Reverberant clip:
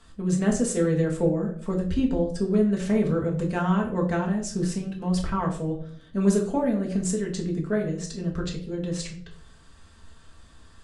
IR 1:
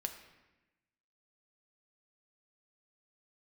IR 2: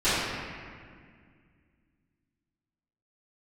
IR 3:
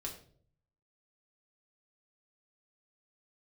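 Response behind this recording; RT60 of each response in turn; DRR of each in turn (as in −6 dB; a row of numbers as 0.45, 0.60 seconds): 3; 1.0, 2.0, 0.55 seconds; 5.0, −18.0, −1.5 decibels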